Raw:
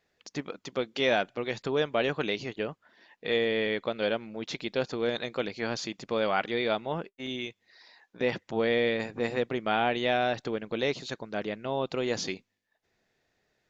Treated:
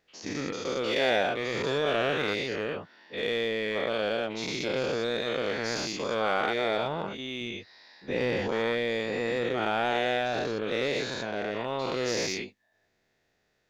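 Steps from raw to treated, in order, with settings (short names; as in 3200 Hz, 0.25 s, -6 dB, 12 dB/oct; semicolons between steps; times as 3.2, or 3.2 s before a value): spectral dilation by 0.24 s; 7.41–8.48 low shelf 160 Hz +7.5 dB; in parallel at -8.5 dB: overloaded stage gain 24 dB; on the sum: gain -7 dB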